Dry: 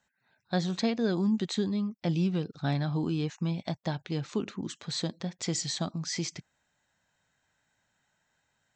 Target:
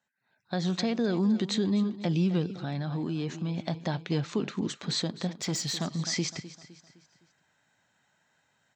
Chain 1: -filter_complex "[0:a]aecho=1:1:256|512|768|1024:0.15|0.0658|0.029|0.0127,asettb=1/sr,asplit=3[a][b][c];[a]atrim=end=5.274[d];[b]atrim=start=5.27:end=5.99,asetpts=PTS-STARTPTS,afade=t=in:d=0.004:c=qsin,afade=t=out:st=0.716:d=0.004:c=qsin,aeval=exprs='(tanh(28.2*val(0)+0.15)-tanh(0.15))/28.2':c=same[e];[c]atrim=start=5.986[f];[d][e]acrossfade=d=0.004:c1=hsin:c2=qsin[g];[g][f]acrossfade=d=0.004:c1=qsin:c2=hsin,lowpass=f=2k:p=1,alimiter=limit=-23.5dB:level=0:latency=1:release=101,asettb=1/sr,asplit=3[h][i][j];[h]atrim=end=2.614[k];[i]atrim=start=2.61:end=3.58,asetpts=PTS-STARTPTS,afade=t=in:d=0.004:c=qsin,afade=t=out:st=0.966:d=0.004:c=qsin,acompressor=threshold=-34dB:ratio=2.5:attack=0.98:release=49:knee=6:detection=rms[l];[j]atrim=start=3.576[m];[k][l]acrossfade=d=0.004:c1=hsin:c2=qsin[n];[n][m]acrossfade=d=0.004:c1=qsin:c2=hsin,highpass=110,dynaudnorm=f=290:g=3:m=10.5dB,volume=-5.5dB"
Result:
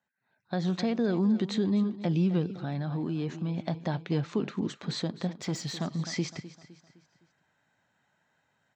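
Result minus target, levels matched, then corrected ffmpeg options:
8000 Hz band -7.5 dB
-filter_complex "[0:a]aecho=1:1:256|512|768|1024:0.15|0.0658|0.029|0.0127,asettb=1/sr,asplit=3[a][b][c];[a]atrim=end=5.274[d];[b]atrim=start=5.27:end=5.99,asetpts=PTS-STARTPTS,afade=t=in:d=0.004:c=qsin,afade=t=out:st=0.716:d=0.004:c=qsin,aeval=exprs='(tanh(28.2*val(0)+0.15)-tanh(0.15))/28.2':c=same[e];[c]atrim=start=5.986[f];[d][e]acrossfade=d=0.004:c1=hsin:c2=qsin[g];[g][f]acrossfade=d=0.004:c1=qsin:c2=hsin,lowpass=f=6.9k:p=1,alimiter=limit=-23.5dB:level=0:latency=1:release=101,asettb=1/sr,asplit=3[h][i][j];[h]atrim=end=2.614[k];[i]atrim=start=2.61:end=3.58,asetpts=PTS-STARTPTS,afade=t=in:d=0.004:c=qsin,afade=t=out:st=0.966:d=0.004:c=qsin,acompressor=threshold=-34dB:ratio=2.5:attack=0.98:release=49:knee=6:detection=rms[l];[j]atrim=start=3.576[m];[k][l]acrossfade=d=0.004:c1=hsin:c2=qsin[n];[n][m]acrossfade=d=0.004:c1=qsin:c2=hsin,highpass=110,dynaudnorm=f=290:g=3:m=10.5dB,volume=-5.5dB"

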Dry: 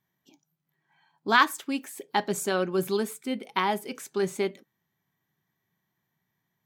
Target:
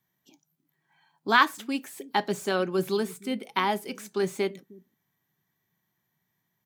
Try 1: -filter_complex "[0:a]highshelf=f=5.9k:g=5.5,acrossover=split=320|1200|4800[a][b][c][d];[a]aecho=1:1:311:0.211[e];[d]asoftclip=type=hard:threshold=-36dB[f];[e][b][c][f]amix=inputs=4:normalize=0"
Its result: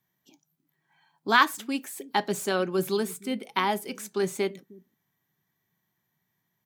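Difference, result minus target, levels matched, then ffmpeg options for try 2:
hard clip: distortion -5 dB
-filter_complex "[0:a]highshelf=f=5.9k:g=5.5,acrossover=split=320|1200|4800[a][b][c][d];[a]aecho=1:1:311:0.211[e];[d]asoftclip=type=hard:threshold=-44.5dB[f];[e][b][c][f]amix=inputs=4:normalize=0"

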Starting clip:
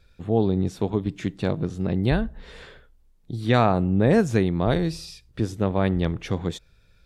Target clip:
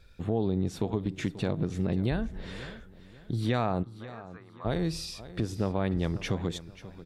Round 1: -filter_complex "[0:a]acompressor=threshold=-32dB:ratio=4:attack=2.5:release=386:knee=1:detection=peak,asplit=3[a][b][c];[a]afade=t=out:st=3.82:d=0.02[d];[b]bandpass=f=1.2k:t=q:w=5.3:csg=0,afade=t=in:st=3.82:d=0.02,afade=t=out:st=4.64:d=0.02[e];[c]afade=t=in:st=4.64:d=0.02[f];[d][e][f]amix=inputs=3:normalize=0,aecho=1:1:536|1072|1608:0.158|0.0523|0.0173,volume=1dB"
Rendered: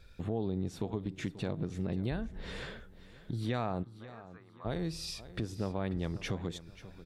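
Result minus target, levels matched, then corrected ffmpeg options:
compressor: peak gain reduction +6 dB
-filter_complex "[0:a]acompressor=threshold=-24dB:ratio=4:attack=2.5:release=386:knee=1:detection=peak,asplit=3[a][b][c];[a]afade=t=out:st=3.82:d=0.02[d];[b]bandpass=f=1.2k:t=q:w=5.3:csg=0,afade=t=in:st=3.82:d=0.02,afade=t=out:st=4.64:d=0.02[e];[c]afade=t=in:st=4.64:d=0.02[f];[d][e][f]amix=inputs=3:normalize=0,aecho=1:1:536|1072|1608:0.158|0.0523|0.0173,volume=1dB"

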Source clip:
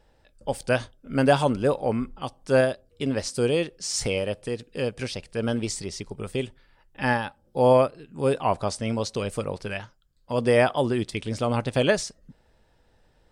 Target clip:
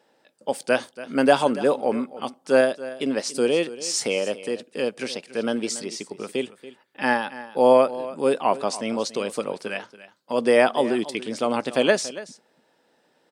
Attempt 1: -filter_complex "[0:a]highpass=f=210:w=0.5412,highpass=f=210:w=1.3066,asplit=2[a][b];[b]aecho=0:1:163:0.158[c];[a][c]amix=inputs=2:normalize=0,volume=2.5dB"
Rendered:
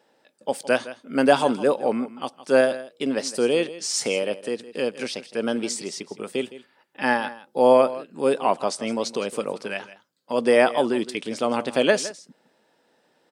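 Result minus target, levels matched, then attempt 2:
echo 0.12 s early
-filter_complex "[0:a]highpass=f=210:w=0.5412,highpass=f=210:w=1.3066,asplit=2[a][b];[b]aecho=0:1:283:0.158[c];[a][c]amix=inputs=2:normalize=0,volume=2.5dB"

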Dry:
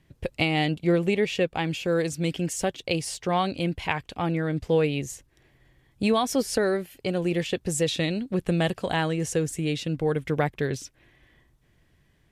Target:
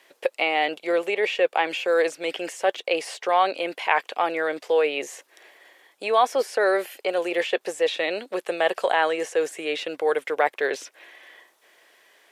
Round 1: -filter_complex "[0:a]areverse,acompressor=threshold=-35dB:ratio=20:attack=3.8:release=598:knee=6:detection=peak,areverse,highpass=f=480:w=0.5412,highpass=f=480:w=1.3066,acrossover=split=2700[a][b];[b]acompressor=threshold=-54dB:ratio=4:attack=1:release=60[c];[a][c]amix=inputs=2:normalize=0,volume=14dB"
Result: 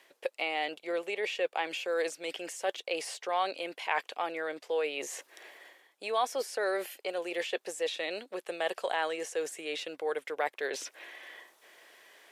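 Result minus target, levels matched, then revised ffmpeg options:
compressor: peak gain reduction +10.5 dB
-filter_complex "[0:a]areverse,acompressor=threshold=-24dB:ratio=20:attack=3.8:release=598:knee=6:detection=peak,areverse,highpass=f=480:w=0.5412,highpass=f=480:w=1.3066,acrossover=split=2700[a][b];[b]acompressor=threshold=-54dB:ratio=4:attack=1:release=60[c];[a][c]amix=inputs=2:normalize=0,volume=14dB"

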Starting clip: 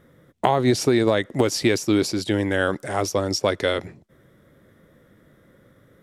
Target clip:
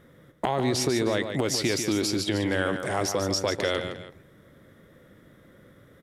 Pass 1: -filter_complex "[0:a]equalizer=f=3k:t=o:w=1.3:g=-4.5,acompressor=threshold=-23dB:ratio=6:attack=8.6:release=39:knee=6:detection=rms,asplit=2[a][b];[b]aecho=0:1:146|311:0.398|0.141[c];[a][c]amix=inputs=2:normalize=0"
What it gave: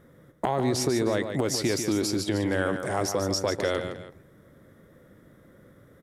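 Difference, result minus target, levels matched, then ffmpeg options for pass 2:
4000 Hz band -2.5 dB
-filter_complex "[0:a]equalizer=f=3k:t=o:w=1.3:g=2.5,acompressor=threshold=-23dB:ratio=6:attack=8.6:release=39:knee=6:detection=rms,asplit=2[a][b];[b]aecho=0:1:146|311:0.398|0.141[c];[a][c]amix=inputs=2:normalize=0"

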